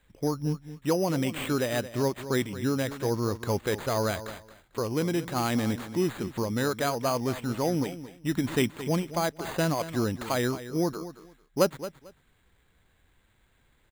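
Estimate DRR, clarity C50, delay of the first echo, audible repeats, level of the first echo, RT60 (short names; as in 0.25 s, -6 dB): none, none, 0.223 s, 2, -13.5 dB, none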